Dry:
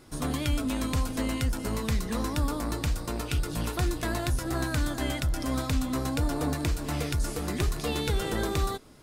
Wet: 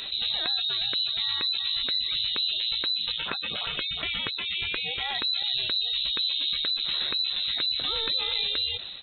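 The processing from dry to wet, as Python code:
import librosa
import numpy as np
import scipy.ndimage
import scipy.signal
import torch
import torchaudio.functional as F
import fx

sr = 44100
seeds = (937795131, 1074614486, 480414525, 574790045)

y = fx.fade_out_tail(x, sr, length_s=0.54)
y = fx.spec_gate(y, sr, threshold_db=-30, keep='strong')
y = fx.highpass(y, sr, hz=770.0, slope=6, at=(3.12, 5.15))
y = fx.freq_invert(y, sr, carrier_hz=4000)
y = fx.env_flatten(y, sr, amount_pct=70)
y = y * 10.0 ** (-4.5 / 20.0)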